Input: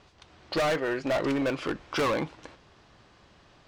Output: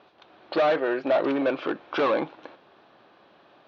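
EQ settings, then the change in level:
high-frequency loss of the air 230 metres
loudspeaker in its box 360–5,300 Hz, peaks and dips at 450 Hz −3 dB, 1,000 Hz −3 dB, 2,000 Hz −8 dB, 2,900 Hz −4 dB, 4,900 Hz −7 dB
parametric band 1,300 Hz −2.5 dB
+8.0 dB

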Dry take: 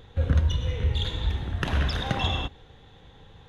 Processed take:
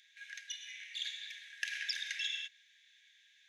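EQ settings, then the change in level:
Chebyshev high-pass with heavy ripple 1,600 Hz, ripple 9 dB
+2.0 dB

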